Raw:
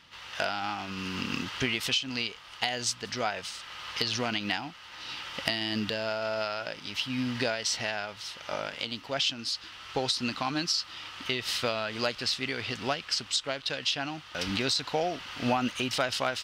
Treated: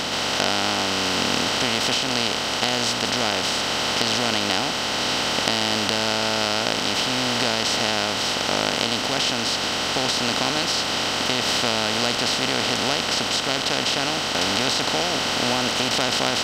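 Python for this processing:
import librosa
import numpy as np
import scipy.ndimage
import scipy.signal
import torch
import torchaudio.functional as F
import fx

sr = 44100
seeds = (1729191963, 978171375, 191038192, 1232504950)

y = fx.bin_compress(x, sr, power=0.2)
y = F.gain(torch.from_numpy(y), -3.0).numpy()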